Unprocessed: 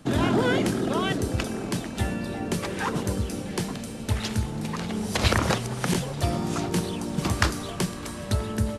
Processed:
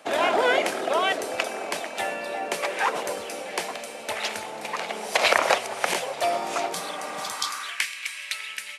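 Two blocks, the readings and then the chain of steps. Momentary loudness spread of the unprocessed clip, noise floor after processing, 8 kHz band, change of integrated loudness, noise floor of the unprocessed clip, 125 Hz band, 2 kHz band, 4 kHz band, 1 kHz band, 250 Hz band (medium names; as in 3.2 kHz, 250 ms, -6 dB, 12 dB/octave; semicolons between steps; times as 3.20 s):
8 LU, -38 dBFS, +1.5 dB, +1.0 dB, -36 dBFS, -26.0 dB, +5.5 dB, +3.5 dB, +5.5 dB, -12.5 dB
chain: peaking EQ 2.3 kHz +7.5 dB 0.65 oct; spectral replace 6.76–7.58 s, 220–3100 Hz after; high-pass sweep 630 Hz -> 2.3 kHz, 7.13–7.93 s; trim +1 dB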